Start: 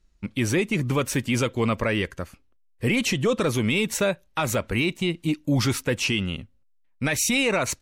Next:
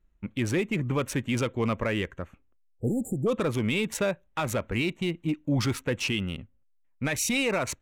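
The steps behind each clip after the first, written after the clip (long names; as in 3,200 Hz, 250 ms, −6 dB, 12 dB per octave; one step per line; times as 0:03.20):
adaptive Wiener filter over 9 samples
time-frequency box erased 0:02.64–0:03.27, 850–7,000 Hz
level −3.5 dB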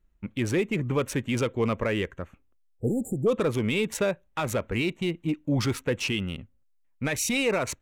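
dynamic equaliser 440 Hz, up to +4 dB, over −38 dBFS, Q 2.8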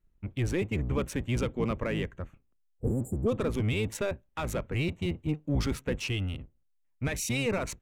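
sub-octave generator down 1 octave, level +2 dB
level −5.5 dB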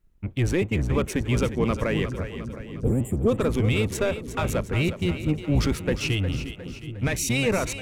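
echo with a time of its own for lows and highs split 340 Hz, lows 781 ms, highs 357 ms, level −10.5 dB
level +6 dB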